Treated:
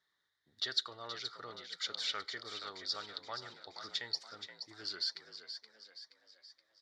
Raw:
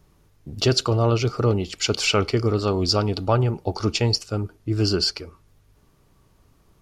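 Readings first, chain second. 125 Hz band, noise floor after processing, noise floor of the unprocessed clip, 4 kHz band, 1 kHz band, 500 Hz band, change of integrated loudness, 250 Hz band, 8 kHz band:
under -40 dB, -82 dBFS, -60 dBFS, -11.5 dB, -18.0 dB, -28.5 dB, -17.5 dB, -33.5 dB, -19.5 dB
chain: two resonant band-passes 2.6 kHz, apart 1 oct; on a send: frequency-shifting echo 474 ms, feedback 50%, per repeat +55 Hz, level -9.5 dB; on the sum: trim -3 dB

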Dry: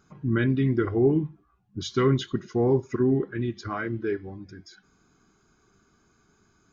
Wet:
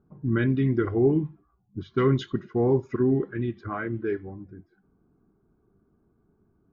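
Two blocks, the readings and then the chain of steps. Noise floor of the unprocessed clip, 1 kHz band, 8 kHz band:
-66 dBFS, -0.5 dB, no reading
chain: level-controlled noise filter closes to 580 Hz, open at -20 dBFS; treble shelf 5.4 kHz -12 dB

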